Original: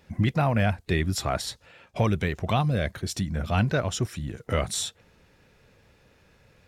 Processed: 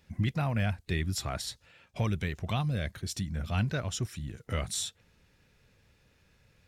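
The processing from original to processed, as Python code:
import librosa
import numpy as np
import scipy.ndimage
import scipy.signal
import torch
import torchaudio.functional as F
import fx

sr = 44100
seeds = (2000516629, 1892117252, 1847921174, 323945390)

y = fx.peak_eq(x, sr, hz=600.0, db=-7.0, octaves=2.9)
y = y * 10.0 ** (-3.5 / 20.0)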